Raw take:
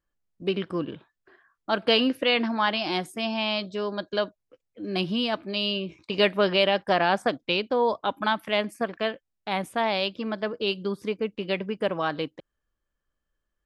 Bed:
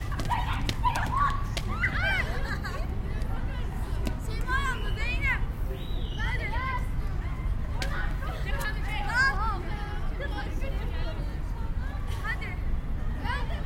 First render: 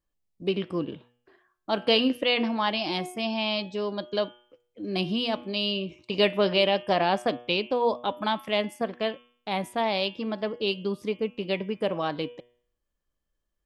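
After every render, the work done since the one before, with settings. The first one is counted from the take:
parametric band 1,500 Hz −7.5 dB 0.64 octaves
hum removal 121 Hz, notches 29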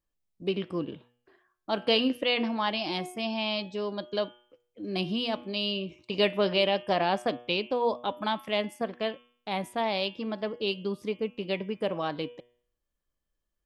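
level −2.5 dB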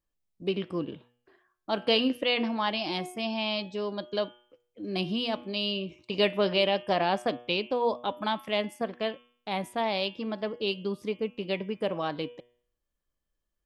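no processing that can be heard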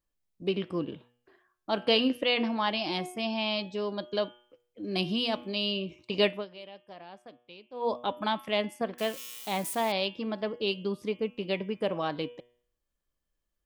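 0:04.91–0:05.54: high-shelf EQ 4,300 Hz +6 dB
0:06.25–0:07.93: duck −21 dB, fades 0.21 s
0:08.98–0:09.92: spike at every zero crossing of −31.5 dBFS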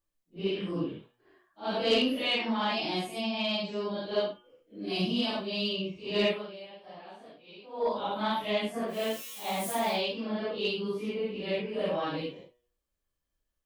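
random phases in long frames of 200 ms
soft clipping −16 dBFS, distortion −23 dB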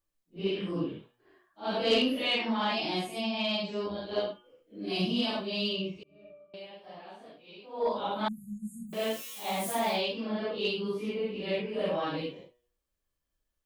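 0:03.86–0:04.28: amplitude modulation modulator 120 Hz, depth 30%
0:06.03–0:06.54: resonances in every octave D, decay 0.74 s
0:08.28–0:08.93: linear-phase brick-wall band-stop 230–6,500 Hz

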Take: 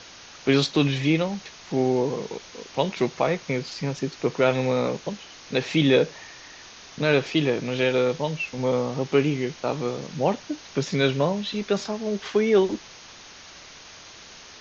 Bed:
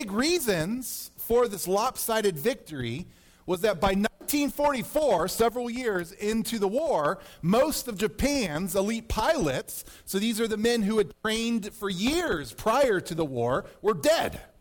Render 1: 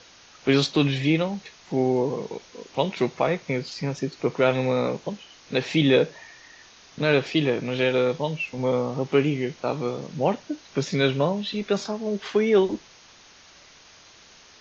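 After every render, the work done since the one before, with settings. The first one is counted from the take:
noise reduction from a noise print 6 dB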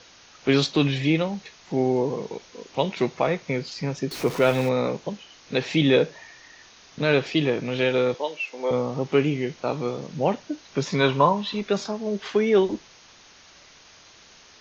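0:04.11–0:04.69: converter with a step at zero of −31 dBFS
0:08.14–0:08.71: high-pass filter 340 Hz 24 dB per octave
0:10.85–0:11.61: parametric band 1,000 Hz +14.5 dB 0.53 octaves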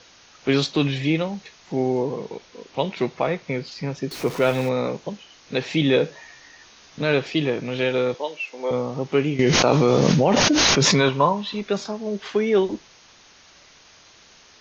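0:02.03–0:04.04: low-pass filter 5,900 Hz
0:06.02–0:07.02: double-tracking delay 14 ms −5 dB
0:09.39–0:11.09: envelope flattener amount 100%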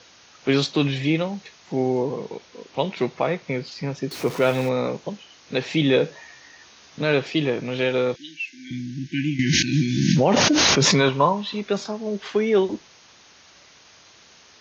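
high-pass filter 61 Hz
0:08.16–0:10.17: time-frequency box erased 350–1,500 Hz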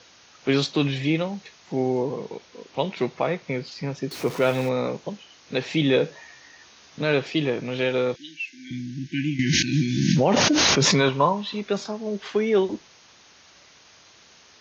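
level −1.5 dB

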